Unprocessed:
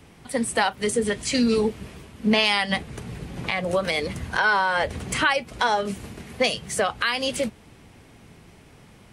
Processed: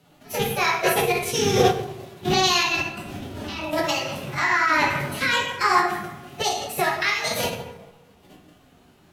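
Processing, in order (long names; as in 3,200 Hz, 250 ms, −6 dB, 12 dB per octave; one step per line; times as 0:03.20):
loose part that buzzes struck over −26 dBFS, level −24 dBFS
output level in coarse steps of 12 dB
phase-vocoder pitch shift with formants kept +9.5 semitones
dense smooth reverb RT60 1 s, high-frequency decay 0.55×, DRR −3.5 dB
formants moved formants +5 semitones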